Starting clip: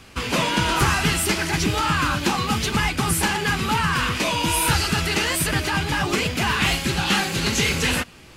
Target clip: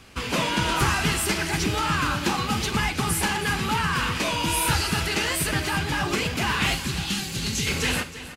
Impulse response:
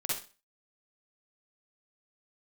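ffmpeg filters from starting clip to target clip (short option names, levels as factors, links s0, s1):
-filter_complex "[0:a]asettb=1/sr,asplit=3[s0][s1][s2];[s0]atrim=end=6.744[s3];[s1]atrim=start=6.74:end=7.67,asetpts=PTS-STARTPTS,afade=t=in:d=0.004:c=qsin,afade=t=out:st=0.926:d=0.004:c=qsin,acrossover=split=250|3000[s4][s5][s6];[s5]acompressor=threshold=0.0178:ratio=6[s7];[s4][s7][s6]amix=inputs=3:normalize=0[s8];[s2]atrim=start=7.666[s9];[s3][s8]acrossfade=d=0.004:c1=hsin:c2=qsin[s10];[s10][s9]acrossfade=d=0.004:c1=qsin:c2=hsin,aecho=1:1:320:0.2,asplit=2[s11][s12];[1:a]atrim=start_sample=2205,asetrate=48510,aresample=44100[s13];[s12][s13]afir=irnorm=-1:irlink=0,volume=0.168[s14];[s11][s14]amix=inputs=2:normalize=0,volume=0.631"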